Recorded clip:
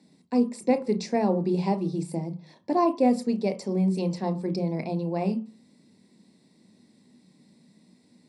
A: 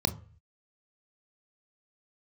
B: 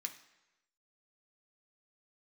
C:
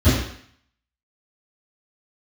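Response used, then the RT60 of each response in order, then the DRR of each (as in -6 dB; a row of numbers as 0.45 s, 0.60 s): A; 0.40 s, 1.0 s, 0.60 s; 9.0 dB, 4.0 dB, -19.5 dB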